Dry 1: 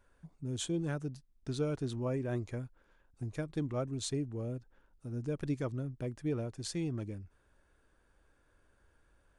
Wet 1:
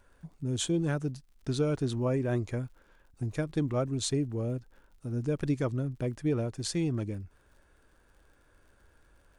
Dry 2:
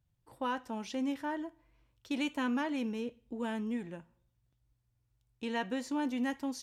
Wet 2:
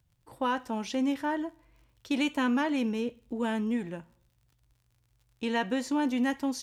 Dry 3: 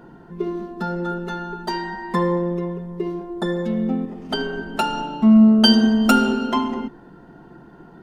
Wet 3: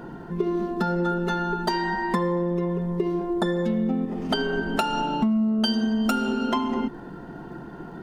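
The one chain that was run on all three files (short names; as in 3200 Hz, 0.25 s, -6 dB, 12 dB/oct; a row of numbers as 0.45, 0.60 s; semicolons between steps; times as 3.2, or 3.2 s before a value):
compressor 8:1, threshold -27 dBFS; crackle 74/s -61 dBFS; gain +6 dB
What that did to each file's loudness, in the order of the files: +5.5, +6.0, -5.0 LU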